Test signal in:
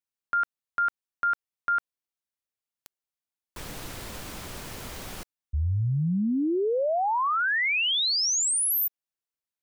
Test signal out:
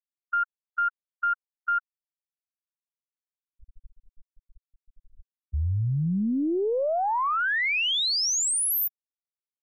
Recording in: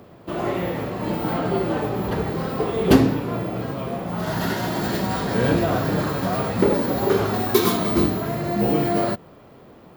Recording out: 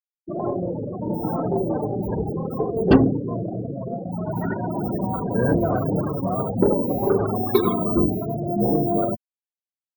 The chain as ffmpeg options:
-af "afftfilt=real='re*gte(hypot(re,im),0.126)':imag='im*gte(hypot(re,im),0.126)':win_size=1024:overlap=0.75,aeval=exprs='0.841*(cos(1*acos(clip(val(0)/0.841,-1,1)))-cos(1*PI/2))+0.106*(cos(2*acos(clip(val(0)/0.841,-1,1)))-cos(2*PI/2))+0.0168*(cos(8*acos(clip(val(0)/0.841,-1,1)))-cos(8*PI/2))':c=same"

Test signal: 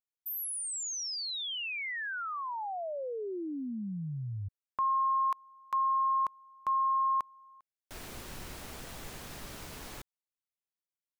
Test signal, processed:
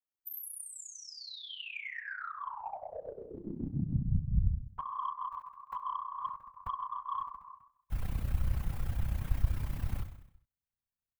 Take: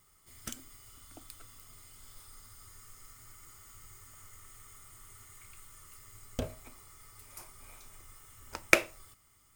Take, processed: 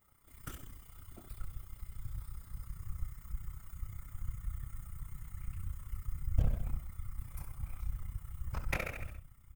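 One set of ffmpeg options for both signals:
-filter_complex "[0:a]equalizer=f=5.8k:w=0.56:g=-12,aecho=1:1:3.8:0.46,asplit=2[a][b];[b]aecho=0:1:69|138|207|276|345|414:0.335|0.178|0.0941|0.0499|0.0264|0.014[c];[a][c]amix=inputs=2:normalize=0,acompressor=threshold=-38dB:ratio=4:attack=20:release=69:knee=6:detection=peak,flanger=delay=16.5:depth=6.3:speed=0.41,afftfilt=real='hypot(re,im)*cos(2*PI*random(0))':imag='hypot(re,im)*sin(2*PI*random(1))':win_size=512:overlap=0.75,tremolo=f=31:d=0.621,asoftclip=type=tanh:threshold=-33.5dB,asubboost=boost=11:cutoff=110,volume=10.5dB"

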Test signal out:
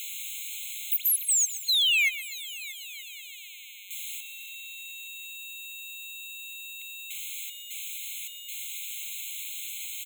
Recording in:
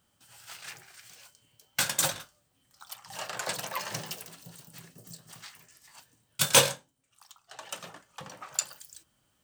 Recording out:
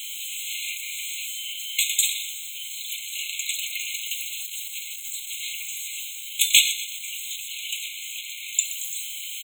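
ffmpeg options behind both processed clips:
-af "aeval=exprs='val(0)+0.5*0.0299*sgn(val(0))':c=same,aeval=exprs='val(0)+0.00141*sin(2*PI*15000*n/s)':c=same,aecho=1:1:124|248|372|496|620:0.188|0.0998|0.0529|0.028|0.0149,afftfilt=real='re*eq(mod(floor(b*sr/1024/2100),2),1)':imag='im*eq(mod(floor(b*sr/1024/2100),2),1)':win_size=1024:overlap=0.75,volume=6.5dB"

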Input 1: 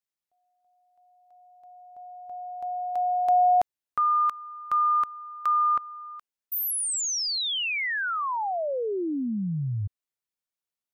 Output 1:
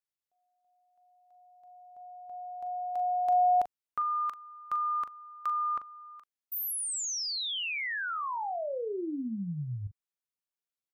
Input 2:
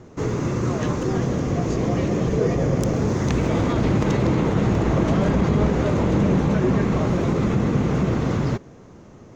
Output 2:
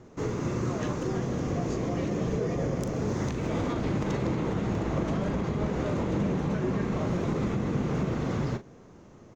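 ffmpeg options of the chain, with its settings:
-filter_complex "[0:a]equalizer=f=80:t=o:w=1.9:g=-2,alimiter=limit=-14dB:level=0:latency=1:release=256,asplit=2[a][b];[b]adelay=40,volume=-11dB[c];[a][c]amix=inputs=2:normalize=0,volume=-6dB"

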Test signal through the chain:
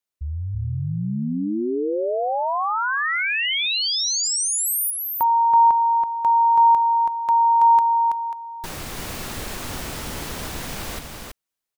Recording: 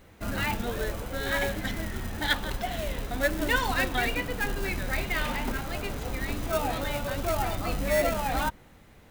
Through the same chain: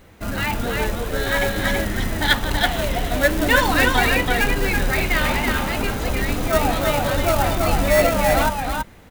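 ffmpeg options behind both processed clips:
-af "aecho=1:1:328:0.668,dynaudnorm=f=570:g=5:m=3dB,volume=5.5dB"

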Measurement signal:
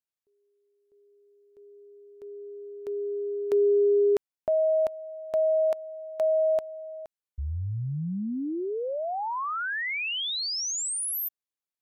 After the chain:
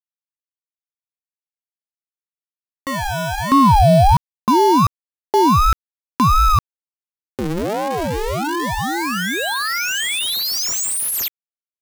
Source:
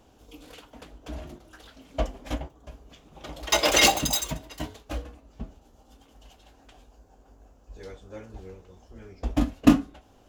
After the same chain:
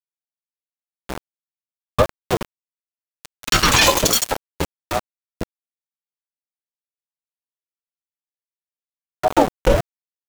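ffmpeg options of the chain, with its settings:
-af "aeval=exprs='val(0)*gte(abs(val(0)),0.0335)':c=same,alimiter=level_in=13.5dB:limit=-1dB:release=50:level=0:latency=1,aeval=exprs='val(0)*sin(2*PI*460*n/s+460*0.5/1.4*sin(2*PI*1.4*n/s))':c=same"

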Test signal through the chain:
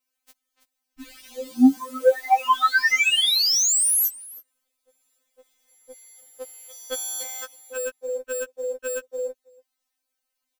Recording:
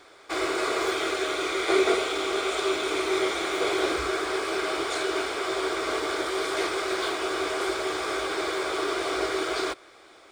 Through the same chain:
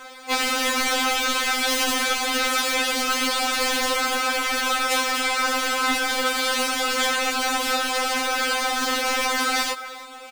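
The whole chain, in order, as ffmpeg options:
-filter_complex "[0:a]asplit=2[a][b];[b]adelay=290,highpass=300,lowpass=3.4k,asoftclip=type=hard:threshold=-20dB,volume=-20dB[c];[a][c]amix=inputs=2:normalize=0,acrusher=bits=4:mode=log:mix=0:aa=0.000001,asplit=2[d][e];[e]aecho=0:1:324:0.0668[f];[d][f]amix=inputs=2:normalize=0,aeval=exprs='0.299*sin(PI/2*6.31*val(0)/0.299)':c=same,afftfilt=real='re*3.46*eq(mod(b,12),0)':imag='im*3.46*eq(mod(b,12),0)':win_size=2048:overlap=0.75,volume=-5.5dB"

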